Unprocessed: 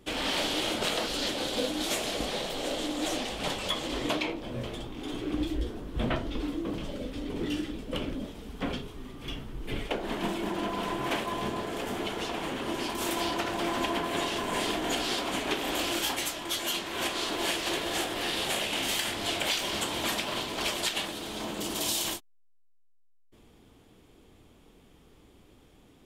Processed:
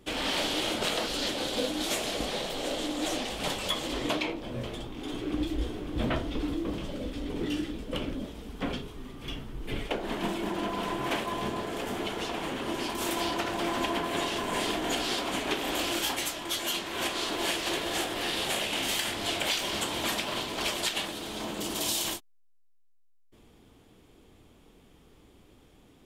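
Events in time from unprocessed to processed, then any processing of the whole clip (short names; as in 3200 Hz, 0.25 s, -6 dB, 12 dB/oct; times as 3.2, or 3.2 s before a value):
3.3–3.93 high shelf 8900 Hz +6 dB
4.97–5.99 echo throw 0.55 s, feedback 65%, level -6 dB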